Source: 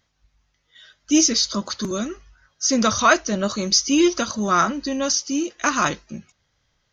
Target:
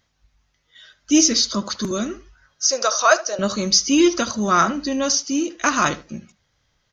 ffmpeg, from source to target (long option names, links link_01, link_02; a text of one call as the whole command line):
ffmpeg -i in.wav -filter_complex "[0:a]asettb=1/sr,asplit=3[link_01][link_02][link_03];[link_01]atrim=end=2.654[link_04];[link_02]atrim=start=2.65:end=3.39,asetpts=PTS-STARTPTS,afade=type=in:duration=0.004:curve=qsin,afade=type=out:start_time=0.736:duration=0.004:curve=qsin,highpass=frequency=490:width=0.5412,highpass=frequency=490:width=1.3066,equalizer=frequency=590:width_type=q:width=4:gain=4,equalizer=frequency=1000:width_type=q:width=4:gain=-4,equalizer=frequency=2100:width_type=q:width=4:gain=-9,equalizer=frequency=3300:width_type=q:width=4:gain=-8,equalizer=frequency=5400:width_type=q:width=4:gain=4,lowpass=frequency=7800:width=0.5412,lowpass=frequency=7800:width=1.3066[link_05];[link_03]atrim=start=3.386[link_06];[link_04][link_05]acrossfade=duration=0.004:curve1=hsin:curve2=qsin[link_07];[link_07][link_06]acrossfade=duration=0.004:curve1=qsin:curve2=hsin,asplit=2[link_08][link_09];[link_09]adelay=75,lowpass=frequency=2100:poles=1,volume=-15.5dB,asplit=2[link_10][link_11];[link_11]adelay=75,lowpass=frequency=2100:poles=1,volume=0.21[link_12];[link_08][link_10][link_12]amix=inputs=3:normalize=0,volume=1.5dB" out.wav